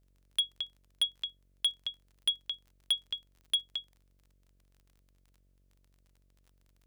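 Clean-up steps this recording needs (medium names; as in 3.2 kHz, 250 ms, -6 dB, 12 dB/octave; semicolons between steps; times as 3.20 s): clip repair -22 dBFS; de-click; de-hum 46.8 Hz, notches 14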